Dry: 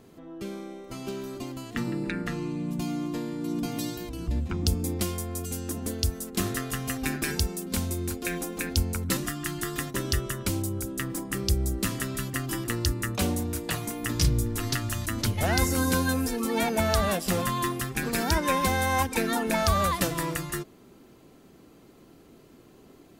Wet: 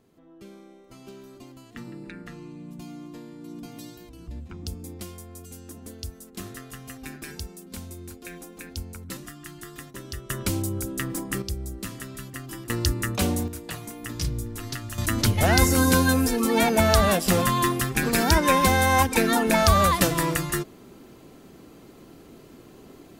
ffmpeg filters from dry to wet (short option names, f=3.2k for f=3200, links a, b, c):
-af "asetnsamples=n=441:p=0,asendcmd='10.3 volume volume 2dB;11.42 volume volume -6.5dB;12.7 volume volume 2.5dB;13.48 volume volume -5dB;14.98 volume volume 5.5dB',volume=-9.5dB"